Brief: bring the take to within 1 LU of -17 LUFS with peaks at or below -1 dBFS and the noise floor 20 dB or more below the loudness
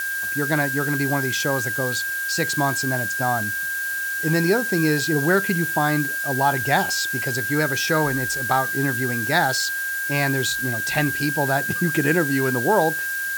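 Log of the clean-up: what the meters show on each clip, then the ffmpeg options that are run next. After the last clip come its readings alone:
steady tone 1600 Hz; tone level -24 dBFS; noise floor -26 dBFS; noise floor target -41 dBFS; loudness -21.0 LUFS; peak -5.5 dBFS; loudness target -17.0 LUFS
-> -af "bandreject=f=1.6k:w=30"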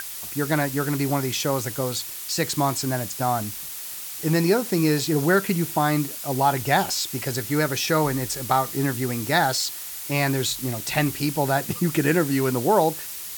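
steady tone none; noise floor -35 dBFS; noise floor target -44 dBFS
-> -af "afftdn=nr=9:nf=-35"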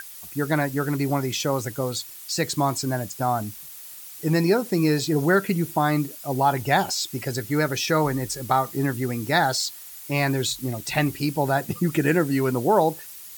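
noise floor -41 dBFS; noise floor target -44 dBFS
-> -af "afftdn=nr=6:nf=-41"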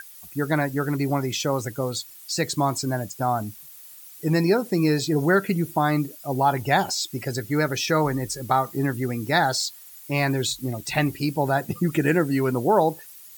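noise floor -45 dBFS; loudness -24.0 LUFS; peak -6.0 dBFS; loudness target -17.0 LUFS
-> -af "volume=7dB,alimiter=limit=-1dB:level=0:latency=1"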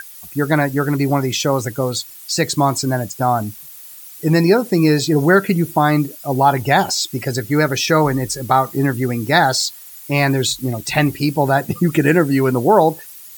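loudness -17.0 LUFS; peak -1.0 dBFS; noise floor -38 dBFS

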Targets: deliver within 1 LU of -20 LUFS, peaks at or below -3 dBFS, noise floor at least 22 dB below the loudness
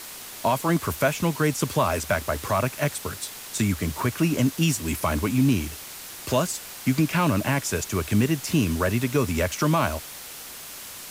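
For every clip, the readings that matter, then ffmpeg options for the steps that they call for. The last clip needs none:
noise floor -40 dBFS; noise floor target -47 dBFS; loudness -24.5 LUFS; peak -10.0 dBFS; loudness target -20.0 LUFS
-> -af "afftdn=nr=7:nf=-40"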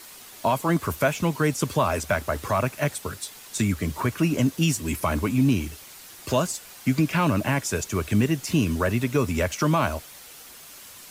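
noise floor -45 dBFS; noise floor target -47 dBFS
-> -af "afftdn=nr=6:nf=-45"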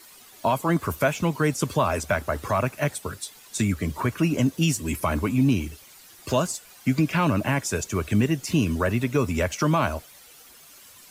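noise floor -50 dBFS; loudness -25.0 LUFS; peak -10.0 dBFS; loudness target -20.0 LUFS
-> -af "volume=5dB"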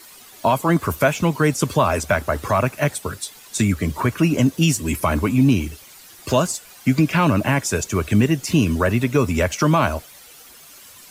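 loudness -20.0 LUFS; peak -5.0 dBFS; noise floor -45 dBFS

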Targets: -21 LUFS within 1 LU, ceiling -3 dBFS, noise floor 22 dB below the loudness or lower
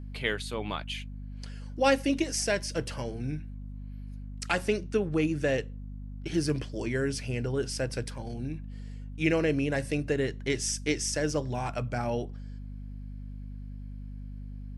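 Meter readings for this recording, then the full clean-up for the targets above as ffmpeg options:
hum 50 Hz; harmonics up to 250 Hz; hum level -38 dBFS; loudness -30.5 LUFS; peak -10.5 dBFS; loudness target -21.0 LUFS
-> -af "bandreject=f=50:t=h:w=4,bandreject=f=100:t=h:w=4,bandreject=f=150:t=h:w=4,bandreject=f=200:t=h:w=4,bandreject=f=250:t=h:w=4"
-af "volume=9.5dB,alimiter=limit=-3dB:level=0:latency=1"

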